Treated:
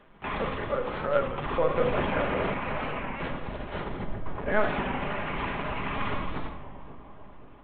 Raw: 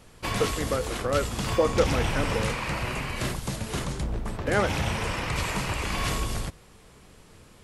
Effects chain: Bessel low-pass 1700 Hz, order 2; bell 270 Hz -14.5 dB 0.32 oct; notch 440 Hz, Q 12; LPC vocoder at 8 kHz pitch kept; low shelf 170 Hz -9 dB; split-band echo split 1100 Hz, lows 0.538 s, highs 0.17 s, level -13 dB; reverb RT60 0.60 s, pre-delay 5 ms, DRR 5 dB; record warp 33 1/3 rpm, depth 100 cents

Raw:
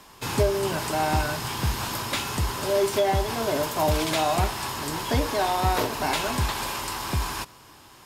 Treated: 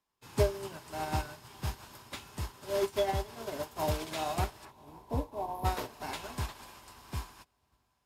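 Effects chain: 4.71–5.65 spectral delete 1100–10000 Hz; 4.65–5.55 resonant high shelf 2900 Hz -10 dB, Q 1.5; diffused feedback echo 0.569 s, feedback 59%, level -15 dB; upward expander 2.5:1, over -39 dBFS; gain -3.5 dB

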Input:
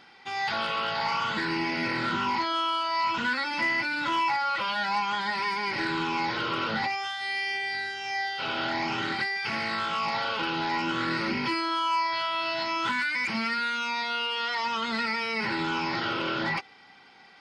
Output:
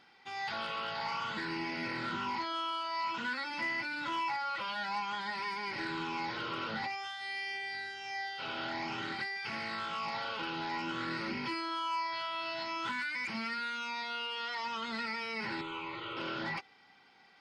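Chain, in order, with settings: 2.71–3.5 HPF 140 Hz; 15.61–16.17 fixed phaser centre 1100 Hz, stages 8; gain -8.5 dB

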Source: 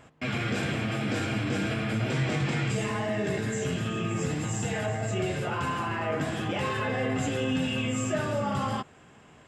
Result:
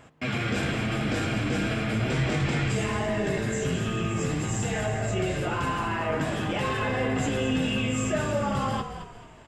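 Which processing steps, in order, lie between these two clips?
frequency-shifting echo 0.22 s, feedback 39%, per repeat -52 Hz, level -10 dB; gain +1.5 dB

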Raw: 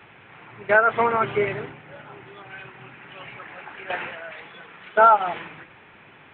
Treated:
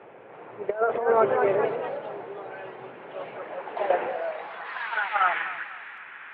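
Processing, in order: band-pass sweep 520 Hz -> 1600 Hz, 4.17–5.12; negative-ratio compressor -29 dBFS, ratio -0.5; echoes that change speed 0.336 s, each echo +2 st, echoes 3, each echo -6 dB; thinning echo 0.251 s, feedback 47%, level -15 dB; gain +6 dB

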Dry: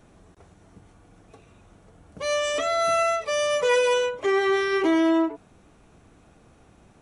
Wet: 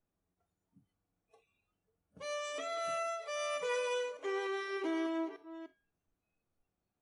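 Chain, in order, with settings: reverse delay 0.298 s, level -12 dB; resonator 91 Hz, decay 0.7 s, harmonics all, mix 60%; spectral noise reduction 19 dB; gain -7.5 dB

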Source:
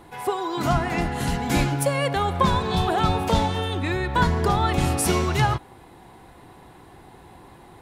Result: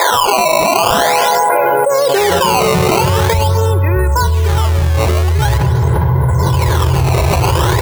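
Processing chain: LPF 1400 Hz 12 dB/oct; bell 210 Hz -7.5 dB 1.9 oct; comb 2 ms, depth 93%; in parallel at -1 dB: limiter -17.5 dBFS, peak gain reduction 11.5 dB; on the sum: high-pass sweep 680 Hz -> 77 Hz, 1.44–3.45; loudest bins only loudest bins 64; decimation with a swept rate 15×, swing 160% 0.45 Hz; on a send at -17 dB: reverb RT60 3.4 s, pre-delay 35 ms; on the sum: fast leveller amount 100%; gain -4 dB

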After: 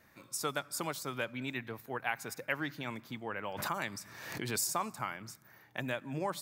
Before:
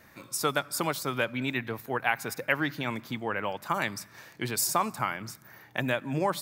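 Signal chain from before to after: dynamic EQ 7100 Hz, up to +4 dB, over -48 dBFS, Q 1.4; 3.49–4.7 backwards sustainer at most 47 dB/s; gain -8 dB

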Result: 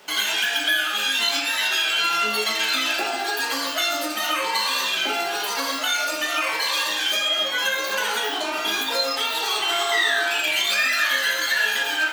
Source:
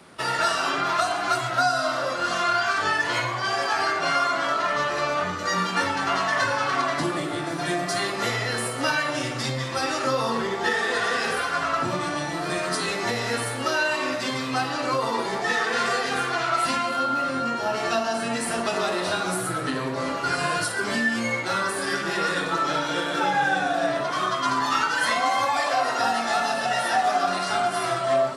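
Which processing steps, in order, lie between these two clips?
bell 4100 Hz -8.5 dB 0.23 oct; spring tank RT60 1.9 s, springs 44 ms, chirp 55 ms, DRR 3 dB; speed mistake 33 rpm record played at 78 rpm

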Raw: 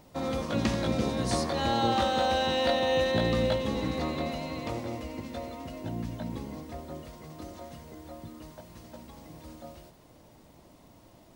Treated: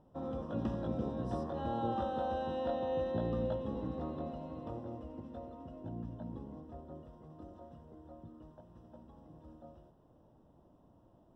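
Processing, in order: running mean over 20 samples; gain -7.5 dB

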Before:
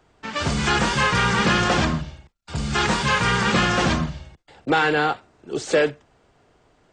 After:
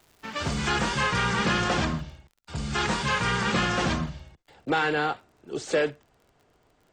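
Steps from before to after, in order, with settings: crackle 370/s -41 dBFS, from 0.91 s 33/s; gain -5.5 dB

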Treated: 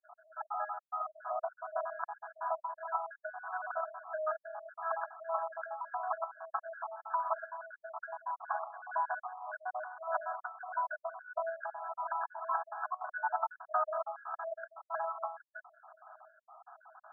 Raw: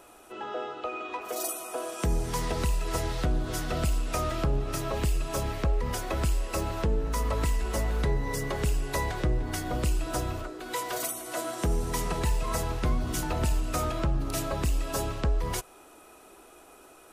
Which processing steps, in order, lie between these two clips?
random spectral dropouts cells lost 51%; 12.86–13.57 negative-ratio compressor -36 dBFS, ratio -1; brick-wall FIR band-pass 610–1700 Hz; gain +3.5 dB

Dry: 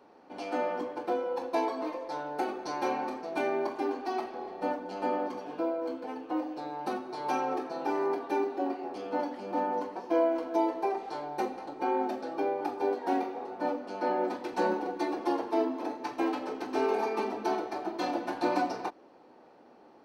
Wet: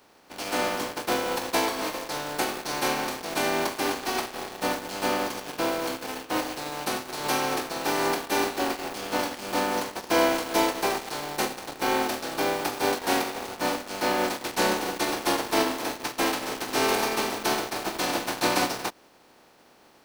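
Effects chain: spectral contrast lowered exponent 0.46; in parallel at -4 dB: bit-crush 6-bit

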